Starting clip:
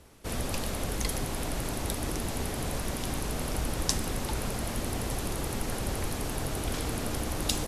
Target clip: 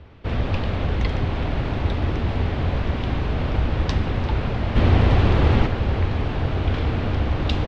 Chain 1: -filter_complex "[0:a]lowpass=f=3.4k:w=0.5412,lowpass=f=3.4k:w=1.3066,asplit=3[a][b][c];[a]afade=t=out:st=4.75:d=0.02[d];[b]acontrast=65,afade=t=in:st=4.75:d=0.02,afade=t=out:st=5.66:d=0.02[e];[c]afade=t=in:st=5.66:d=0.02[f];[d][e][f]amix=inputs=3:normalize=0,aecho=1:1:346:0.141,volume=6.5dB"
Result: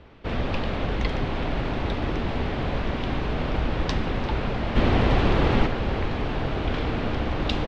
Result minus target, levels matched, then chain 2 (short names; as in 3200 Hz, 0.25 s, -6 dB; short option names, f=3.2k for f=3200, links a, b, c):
125 Hz band -3.0 dB
-filter_complex "[0:a]lowpass=f=3.4k:w=0.5412,lowpass=f=3.4k:w=1.3066,equalizer=f=85:w=1.4:g=10.5,asplit=3[a][b][c];[a]afade=t=out:st=4.75:d=0.02[d];[b]acontrast=65,afade=t=in:st=4.75:d=0.02,afade=t=out:st=5.66:d=0.02[e];[c]afade=t=in:st=5.66:d=0.02[f];[d][e][f]amix=inputs=3:normalize=0,aecho=1:1:346:0.141,volume=6.5dB"